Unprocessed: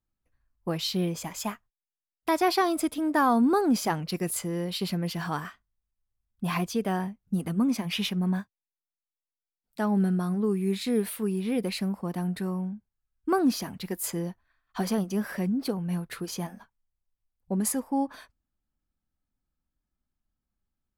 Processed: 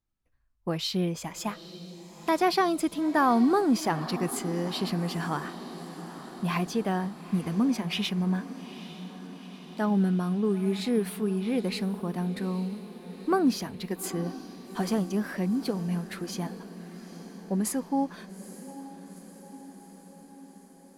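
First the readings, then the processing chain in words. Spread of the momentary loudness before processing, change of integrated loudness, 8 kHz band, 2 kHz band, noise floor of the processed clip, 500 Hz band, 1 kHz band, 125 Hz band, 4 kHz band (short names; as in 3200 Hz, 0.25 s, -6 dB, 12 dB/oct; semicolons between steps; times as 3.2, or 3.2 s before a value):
11 LU, 0.0 dB, -3.0 dB, 0.0 dB, -52 dBFS, +0.5 dB, 0.0 dB, 0.0 dB, -0.5 dB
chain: high shelf 11000 Hz -9.5 dB; on a send: diffused feedback echo 0.864 s, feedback 66%, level -14.5 dB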